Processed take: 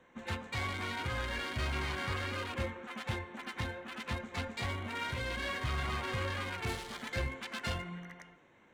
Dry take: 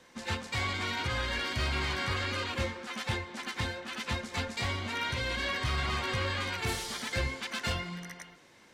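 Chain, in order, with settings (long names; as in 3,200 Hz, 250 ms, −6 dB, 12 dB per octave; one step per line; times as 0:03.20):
adaptive Wiener filter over 9 samples
hum removal 439 Hz, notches 30
level −3 dB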